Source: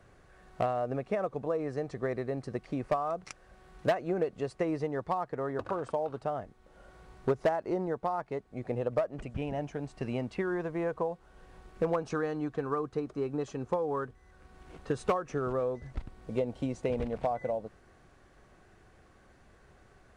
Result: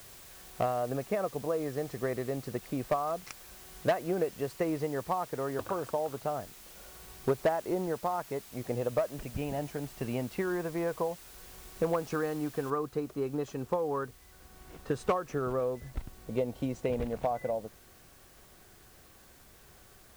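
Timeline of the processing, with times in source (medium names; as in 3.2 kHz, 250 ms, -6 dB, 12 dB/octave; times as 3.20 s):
12.70 s: noise floor step -52 dB -60 dB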